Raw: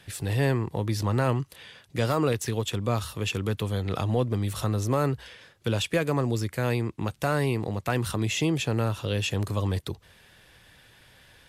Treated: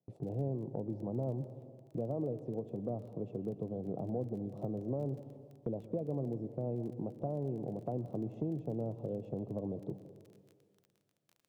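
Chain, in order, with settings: elliptic band-pass 130–690 Hz, stop band 40 dB; gate -53 dBFS, range -25 dB; compression 2.5:1, threshold -38 dBFS, peak gain reduction 11.5 dB; crackle 19 per s -49 dBFS; plate-style reverb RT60 2 s, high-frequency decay 0.9×, pre-delay 105 ms, DRR 12 dB

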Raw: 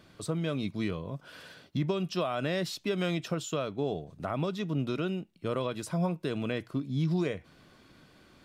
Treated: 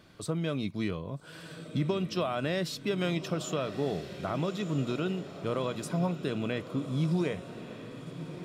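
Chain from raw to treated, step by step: echo that smears into a reverb 1284 ms, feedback 54%, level -11.5 dB

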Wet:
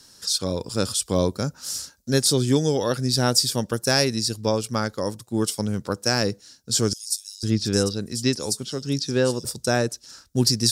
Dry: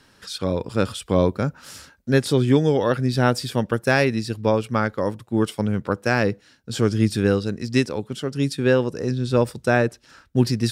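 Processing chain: resonant high shelf 3.7 kHz +13.5 dB, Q 1.5; 6.93–9.45 s: bands offset in time highs, lows 500 ms, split 4.9 kHz; trim -3 dB

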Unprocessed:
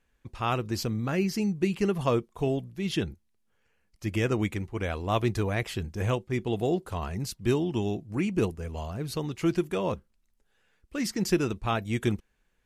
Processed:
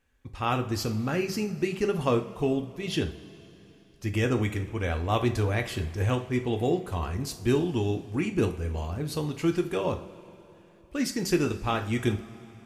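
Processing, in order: two-slope reverb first 0.37 s, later 3.3 s, from -18 dB, DRR 5 dB

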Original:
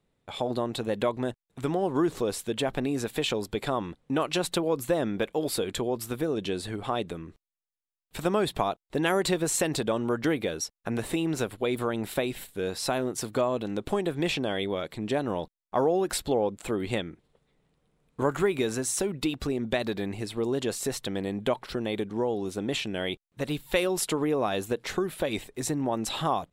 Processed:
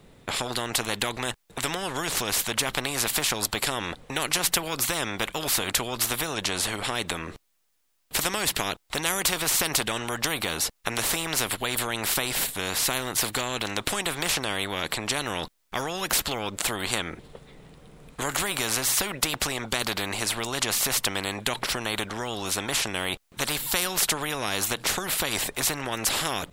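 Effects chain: spectrum-flattening compressor 4:1; trim +6 dB

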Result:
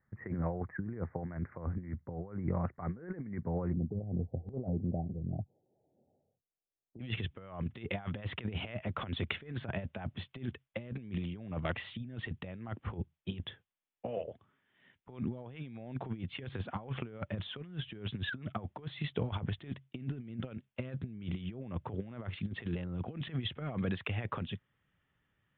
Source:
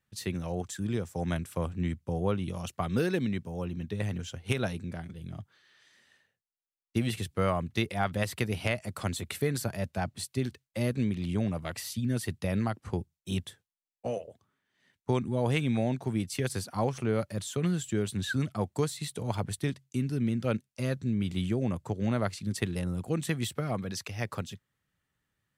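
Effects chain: steep low-pass 2.1 kHz 96 dB/octave, from 3.72 s 800 Hz, from 6.99 s 3.5 kHz; compressor with a negative ratio -35 dBFS, ratio -0.5; trim -1.5 dB

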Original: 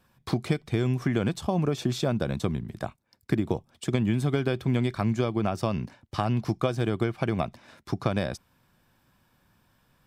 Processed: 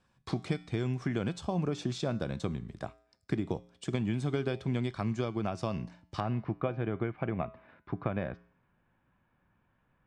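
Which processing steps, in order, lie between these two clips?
low-pass 8.5 kHz 24 dB/octave, from 6.20 s 2.5 kHz; feedback comb 59 Hz, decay 0.58 s, harmonics odd, mix 50%; trim -1 dB

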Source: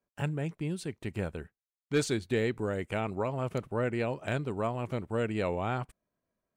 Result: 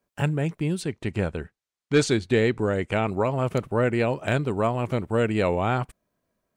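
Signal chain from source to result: 0.82–3.07 s: low-pass 8 kHz 12 dB/octave; trim +8 dB

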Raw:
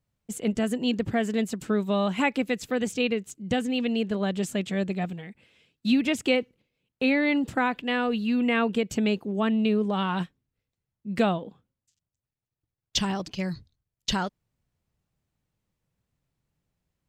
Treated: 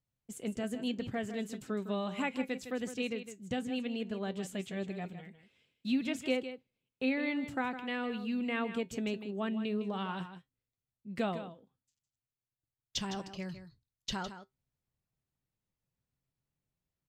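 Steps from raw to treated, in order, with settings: feedback comb 130 Hz, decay 0.15 s, harmonics all, mix 50%; delay 158 ms -11 dB; trim -6.5 dB

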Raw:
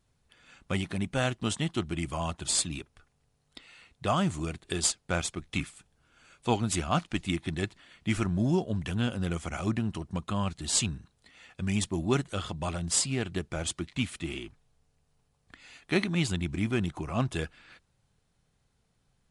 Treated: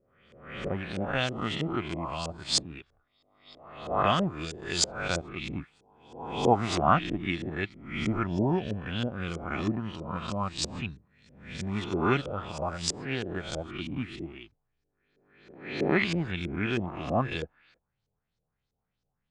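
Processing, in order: reverse spectral sustain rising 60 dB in 1.25 s; LFO low-pass saw up 3.1 Hz 440–6100 Hz; upward expansion 1.5:1, over -46 dBFS

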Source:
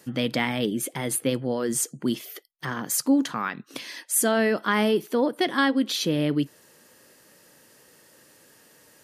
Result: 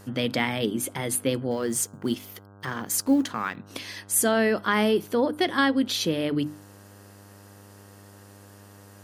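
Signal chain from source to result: 1.51–3.56 s: companding laws mixed up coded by A; hum notches 50/100/150/200/250/300 Hz; mains buzz 100 Hz, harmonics 16, -50 dBFS -5 dB/octave

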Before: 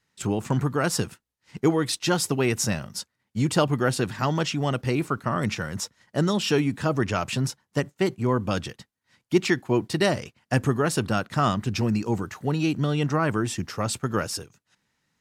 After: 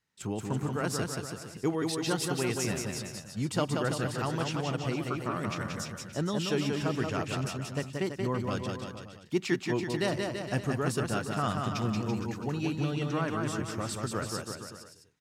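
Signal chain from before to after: bouncing-ball echo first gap 180 ms, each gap 0.85×, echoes 5; trim -8.5 dB

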